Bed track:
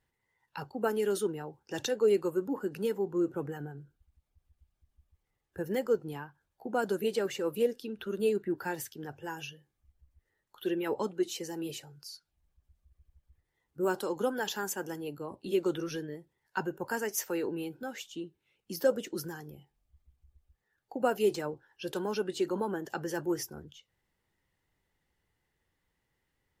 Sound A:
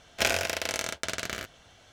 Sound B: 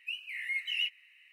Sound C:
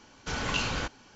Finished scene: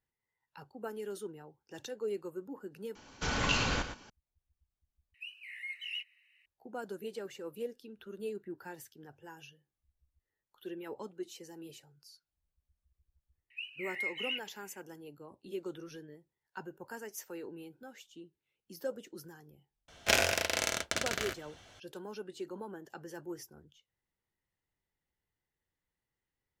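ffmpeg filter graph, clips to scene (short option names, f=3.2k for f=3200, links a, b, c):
-filter_complex "[2:a]asplit=2[a][b];[0:a]volume=-11dB[c];[3:a]aecho=1:1:116:0.316[d];[b]equalizer=f=2.2k:w=0.99:g=11[e];[c]asplit=3[f][g][h];[f]atrim=end=2.954[i];[d]atrim=end=1.15,asetpts=PTS-STARTPTS,volume=-0.5dB[j];[g]atrim=start=4.096:end=5.144[k];[a]atrim=end=1.32,asetpts=PTS-STARTPTS,volume=-8dB[l];[h]atrim=start=6.456[m];[e]atrim=end=1.32,asetpts=PTS-STARTPTS,volume=-13.5dB,afade=t=in:d=0.004:c=hsin,afade=t=out:st=1.316:d=0.004:c=hsin,adelay=13500[n];[1:a]atrim=end=1.92,asetpts=PTS-STARTPTS,volume=-1dB,afade=t=in:d=0.004:c=hsin,afade=t=out:st=1.916:d=0.004:c=hsin,adelay=876708S[o];[i][j]acrossfade=d=0.004:c1=hsin:c2=hsin[p];[p][k]acrossfade=d=0.004:c1=hsin:c2=hsin[q];[q][l]acrossfade=d=0.004:c1=hsin:c2=hsin[r];[r][m]acrossfade=d=0.004:c1=hsin:c2=hsin[s];[s][n][o]amix=inputs=3:normalize=0"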